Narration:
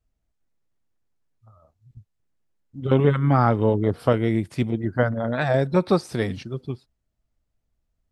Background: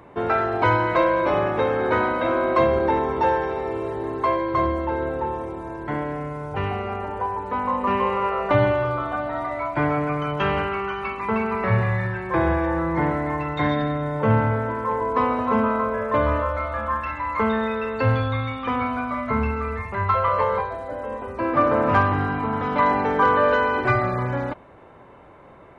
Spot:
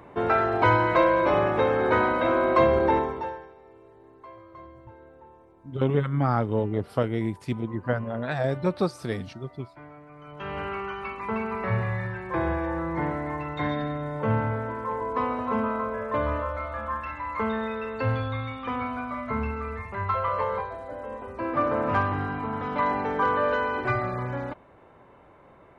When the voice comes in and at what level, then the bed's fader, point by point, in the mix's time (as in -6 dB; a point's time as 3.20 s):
2.90 s, -5.5 dB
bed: 2.97 s -1 dB
3.55 s -24.5 dB
10.09 s -24.5 dB
10.69 s -6 dB